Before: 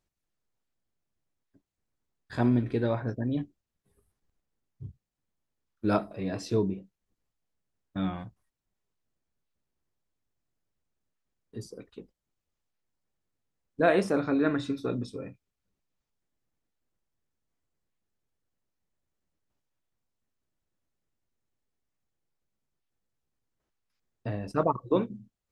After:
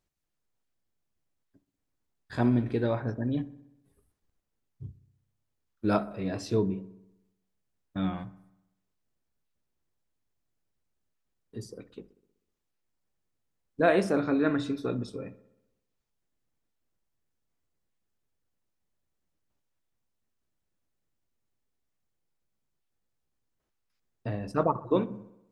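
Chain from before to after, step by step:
delay with a low-pass on its return 63 ms, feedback 61%, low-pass 1,700 Hz, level −17 dB

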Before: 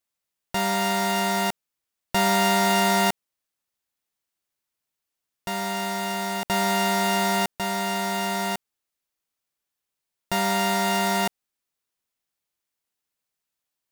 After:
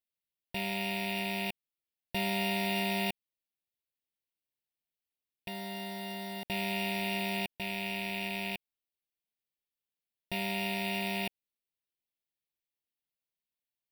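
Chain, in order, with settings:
loose part that buzzes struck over −32 dBFS, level −16 dBFS
phaser with its sweep stopped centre 3,000 Hz, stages 4
level −8.5 dB

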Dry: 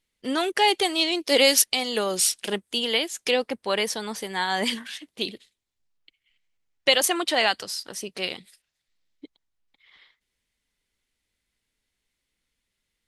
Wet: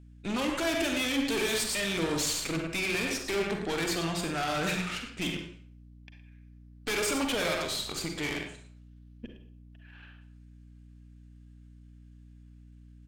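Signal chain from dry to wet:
slap from a distant wall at 19 metres, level −11 dB
tube saturation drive 33 dB, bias 0.75
pitch shifter −4 semitones
on a send at −3.5 dB: convolution reverb RT60 0.50 s, pre-delay 38 ms
on the sum: mains hum 60 Hz, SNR 18 dB
level +4 dB

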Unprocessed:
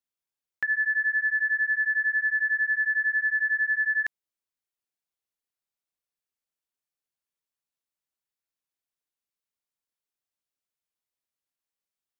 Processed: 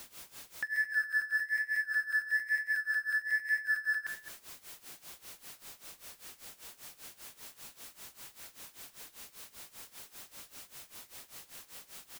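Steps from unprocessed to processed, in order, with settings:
converter with a step at zero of −34 dBFS
flanger 1.1 Hz, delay 6.5 ms, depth 9.8 ms, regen −83%
slap from a distant wall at 37 metres, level −13 dB
amplitude tremolo 5.1 Hz, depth 87%

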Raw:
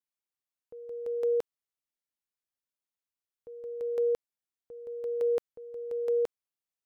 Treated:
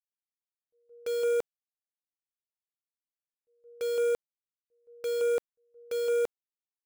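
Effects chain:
downward expander −31 dBFS
in parallel at −3 dB: log-companded quantiser 2 bits
on the sum: level −4.5 dB

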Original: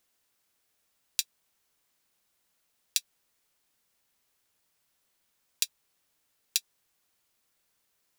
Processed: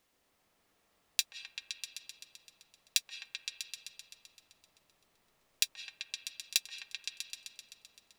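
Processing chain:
high-shelf EQ 4,200 Hz −10.5 dB
notch filter 1,500 Hz, Q 13
echo whose low-pass opens from repeat to repeat 129 ms, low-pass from 750 Hz, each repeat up 1 octave, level 0 dB
on a send at −9.5 dB: convolution reverb RT60 0.55 s, pre-delay 132 ms
on the sum: level +5.5 dB

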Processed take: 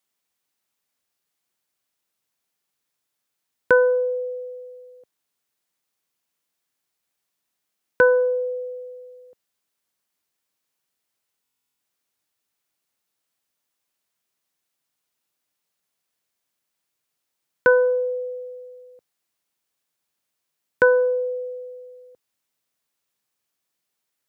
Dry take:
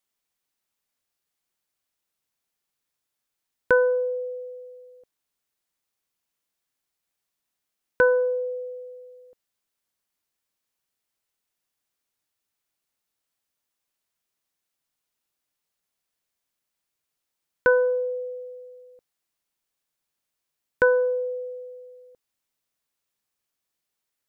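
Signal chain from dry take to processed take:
high-pass filter 90 Hz
buffer that repeats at 0:11.43, samples 1,024, times 15
level +3 dB

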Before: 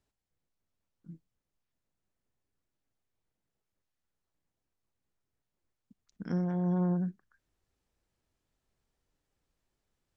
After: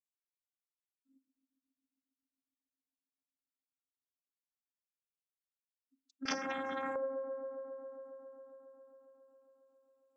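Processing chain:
spectral dynamics exaggerated over time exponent 2
parametric band 250 Hz −9 dB 0.72 octaves
mains-hum notches 60/120/180/240/300/360/420/480/540 Hz
downward compressor 4 to 1, threshold −44 dBFS, peak gain reduction 10 dB
channel vocoder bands 32, saw 268 Hz
bucket-brigade delay 136 ms, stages 2,048, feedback 83%, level −12.5 dB
0:06.25–0:06.96: every bin compressed towards the loudest bin 4 to 1
level +12 dB

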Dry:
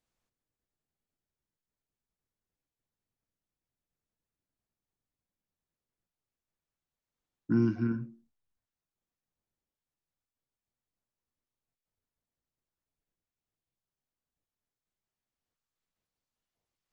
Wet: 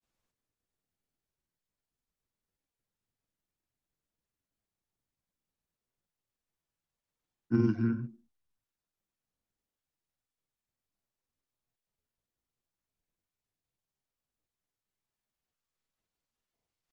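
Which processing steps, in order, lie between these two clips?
granular cloud 100 ms, spray 22 ms, pitch spread up and down by 0 semitones
hard clipping −17.5 dBFS, distortion −35 dB
level +1.5 dB

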